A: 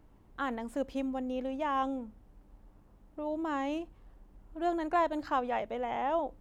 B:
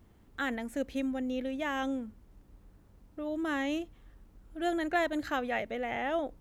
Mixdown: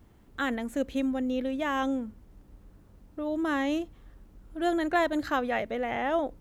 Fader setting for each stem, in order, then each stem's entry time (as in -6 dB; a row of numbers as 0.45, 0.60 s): -6.5, +2.5 dB; 0.00, 0.00 s